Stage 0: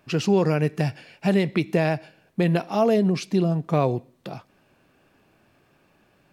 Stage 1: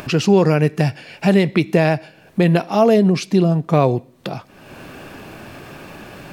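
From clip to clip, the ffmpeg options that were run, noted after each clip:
ffmpeg -i in.wav -af "acompressor=mode=upward:threshold=-27dB:ratio=2.5,volume=6.5dB" out.wav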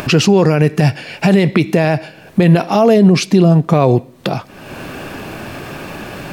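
ffmpeg -i in.wav -af "alimiter=level_in=9.5dB:limit=-1dB:release=50:level=0:latency=1,volume=-1dB" out.wav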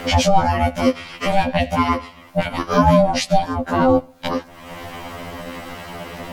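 ffmpeg -i in.wav -af "aeval=exprs='val(0)*sin(2*PI*390*n/s)':channel_layout=same,afftfilt=real='re*2*eq(mod(b,4),0)':imag='im*2*eq(mod(b,4),0)':win_size=2048:overlap=0.75,volume=1dB" out.wav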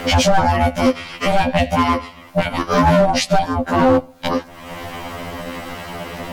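ffmpeg -i in.wav -af "volume=11dB,asoftclip=hard,volume=-11dB,volume=3dB" out.wav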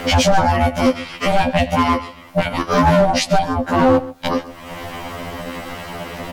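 ffmpeg -i in.wav -af "aecho=1:1:131:0.126" out.wav

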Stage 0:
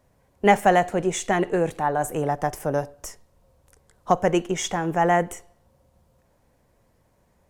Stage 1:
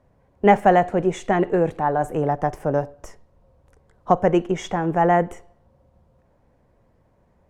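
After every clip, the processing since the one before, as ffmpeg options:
ffmpeg -i in.wav -af "lowpass=frequency=1300:poles=1,volume=3.5dB" out.wav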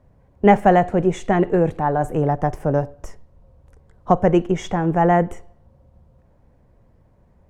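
ffmpeg -i in.wav -af "lowshelf=frequency=200:gain=8.5" out.wav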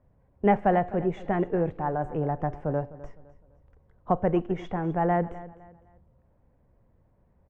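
ffmpeg -i in.wav -af "lowpass=2600,aecho=1:1:255|510|765:0.133|0.044|0.0145,volume=-8.5dB" out.wav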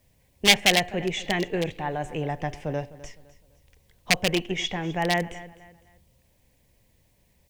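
ffmpeg -i in.wav -af "aeval=exprs='0.15*(abs(mod(val(0)/0.15+3,4)-2)-1)':channel_layout=same,aexciter=amount=11.5:drive=7.3:freq=2100,volume=-1.5dB" out.wav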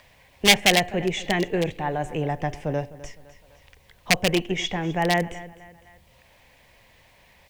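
ffmpeg -i in.wav -filter_complex "[0:a]equalizer=frequency=3700:width=0.66:gain=-2.5,acrossover=split=700|4200[link_01][link_02][link_03];[link_02]acompressor=mode=upward:threshold=-46dB:ratio=2.5[link_04];[link_01][link_04][link_03]amix=inputs=3:normalize=0,volume=3dB" out.wav

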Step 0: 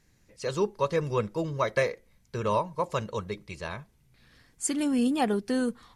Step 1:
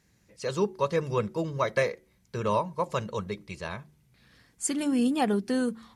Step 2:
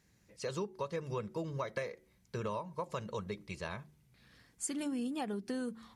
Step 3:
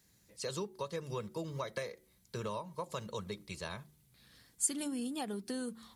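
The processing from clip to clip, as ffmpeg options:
ffmpeg -i in.wav -af "highpass=53,equalizer=frequency=190:width_type=o:width=0.21:gain=5,bandreject=frequency=74.97:width_type=h:width=4,bandreject=frequency=149.94:width_type=h:width=4,bandreject=frequency=224.91:width_type=h:width=4,bandreject=frequency=299.88:width_type=h:width=4,bandreject=frequency=374.85:width_type=h:width=4" out.wav
ffmpeg -i in.wav -af "acompressor=threshold=-31dB:ratio=6,volume=-3.5dB" out.wav
ffmpeg -i in.wav -filter_complex "[0:a]acrossover=split=110|1800[link_01][link_02][link_03];[link_01]acrusher=samples=29:mix=1:aa=0.000001:lfo=1:lforange=29:lforate=3.4[link_04];[link_03]aexciter=amount=2.3:drive=4.7:freq=3300[link_05];[link_04][link_02][link_05]amix=inputs=3:normalize=0,volume=-1.5dB" out.wav

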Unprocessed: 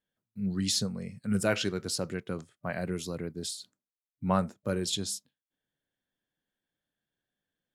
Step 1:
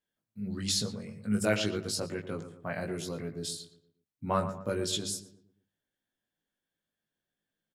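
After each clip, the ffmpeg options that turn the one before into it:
ffmpeg -i in.wav -filter_complex "[0:a]bandreject=frequency=50:width_type=h:width=6,bandreject=frequency=100:width_type=h:width=6,bandreject=frequency=150:width_type=h:width=6,bandreject=frequency=200:width_type=h:width=6,asplit=2[link_01][link_02];[link_02]adelay=19,volume=-3dB[link_03];[link_01][link_03]amix=inputs=2:normalize=0,asplit=2[link_04][link_05];[link_05]adelay=117,lowpass=frequency=1700:poles=1,volume=-10dB,asplit=2[link_06][link_07];[link_07]adelay=117,lowpass=frequency=1700:poles=1,volume=0.43,asplit=2[link_08][link_09];[link_09]adelay=117,lowpass=frequency=1700:poles=1,volume=0.43,asplit=2[link_10][link_11];[link_11]adelay=117,lowpass=frequency=1700:poles=1,volume=0.43,asplit=2[link_12][link_13];[link_13]adelay=117,lowpass=frequency=1700:poles=1,volume=0.43[link_14];[link_06][link_08][link_10][link_12][link_14]amix=inputs=5:normalize=0[link_15];[link_04][link_15]amix=inputs=2:normalize=0,volume=-2.5dB" out.wav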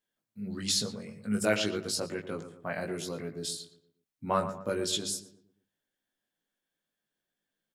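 ffmpeg -i in.wav -af "equalizer=frequency=72:width_type=o:width=2.1:gain=-8.5,volume=1.5dB" out.wav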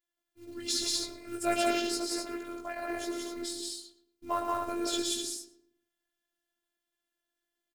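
ffmpeg -i in.wav -af "acrusher=bits=6:mode=log:mix=0:aa=0.000001,aecho=1:1:110.8|177.8|250.7:0.447|0.891|0.562,afftfilt=real='hypot(re,im)*cos(PI*b)':imag='0':win_size=512:overlap=0.75" out.wav

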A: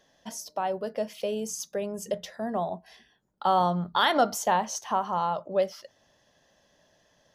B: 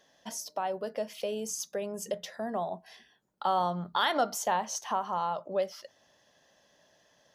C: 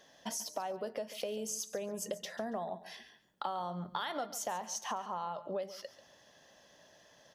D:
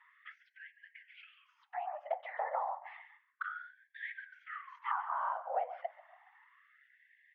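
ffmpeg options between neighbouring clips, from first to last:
ffmpeg -i in.wav -filter_complex "[0:a]lowshelf=frequency=390:gain=-3.5,asplit=2[link_01][link_02];[link_02]acompressor=threshold=-33dB:ratio=6,volume=1dB[link_03];[link_01][link_03]amix=inputs=2:normalize=0,lowshelf=frequency=60:gain=-11.5,volume=-6dB" out.wav
ffmpeg -i in.wav -af "acompressor=threshold=-39dB:ratio=6,aecho=1:1:140|280:0.178|0.0391,volume=3.5dB" out.wav
ffmpeg -i in.wav -af "afftfilt=real='hypot(re,im)*cos(2*PI*random(0))':imag='hypot(re,im)*sin(2*PI*random(1))':win_size=512:overlap=0.75,highpass=frequency=190:width_type=q:width=0.5412,highpass=frequency=190:width_type=q:width=1.307,lowpass=frequency=2200:width_type=q:width=0.5176,lowpass=frequency=2200:width_type=q:width=0.7071,lowpass=frequency=2200:width_type=q:width=1.932,afreqshift=140,afftfilt=real='re*gte(b*sr/1024,470*pow(1600/470,0.5+0.5*sin(2*PI*0.31*pts/sr)))':imag='im*gte(b*sr/1024,470*pow(1600/470,0.5+0.5*sin(2*PI*0.31*pts/sr)))':win_size=1024:overlap=0.75,volume=9dB" out.wav

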